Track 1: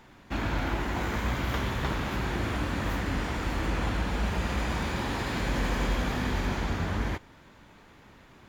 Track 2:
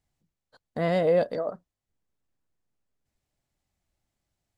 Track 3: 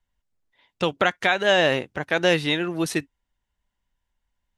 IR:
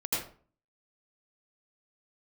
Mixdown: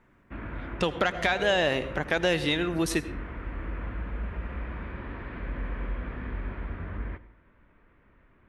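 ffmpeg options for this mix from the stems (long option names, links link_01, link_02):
-filter_complex "[0:a]asubboost=boost=2.5:cutoff=69,lowpass=frequency=2300:width=0.5412,lowpass=frequency=2300:width=1.3066,equalizer=frequency=810:width_type=o:width=0.29:gain=-10,volume=-8dB,asplit=2[link_01][link_02];[link_02]volume=-22dB[link_03];[1:a]adelay=350,volume=-10dB[link_04];[2:a]asoftclip=type=tanh:threshold=-6.5dB,volume=2dB,asplit=2[link_05][link_06];[link_06]volume=-20.5dB[link_07];[3:a]atrim=start_sample=2205[link_08];[link_03][link_07]amix=inputs=2:normalize=0[link_09];[link_09][link_08]afir=irnorm=-1:irlink=0[link_10];[link_01][link_04][link_05][link_10]amix=inputs=4:normalize=0,acompressor=threshold=-27dB:ratio=2"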